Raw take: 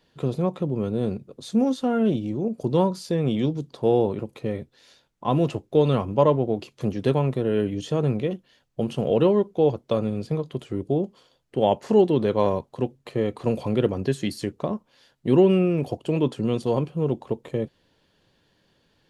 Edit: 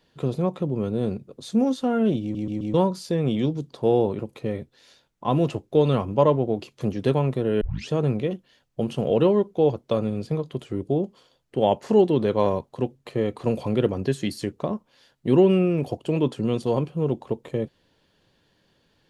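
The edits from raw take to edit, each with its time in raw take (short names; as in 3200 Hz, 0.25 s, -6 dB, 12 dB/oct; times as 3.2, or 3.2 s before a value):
2.22 stutter in place 0.13 s, 4 plays
7.61 tape start 0.28 s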